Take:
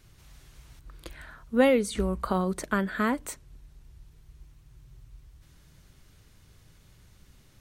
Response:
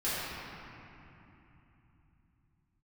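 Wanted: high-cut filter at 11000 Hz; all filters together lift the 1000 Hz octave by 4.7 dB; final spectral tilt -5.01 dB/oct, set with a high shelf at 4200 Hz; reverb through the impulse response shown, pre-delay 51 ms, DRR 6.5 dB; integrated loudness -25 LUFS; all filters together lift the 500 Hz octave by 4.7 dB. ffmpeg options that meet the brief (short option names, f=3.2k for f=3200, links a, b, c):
-filter_complex "[0:a]lowpass=11k,equalizer=f=500:t=o:g=4,equalizer=f=1k:t=o:g=4.5,highshelf=f=4.2k:g=6,asplit=2[a][b];[1:a]atrim=start_sample=2205,adelay=51[c];[b][c]afir=irnorm=-1:irlink=0,volume=-16dB[d];[a][d]amix=inputs=2:normalize=0,volume=-1.5dB"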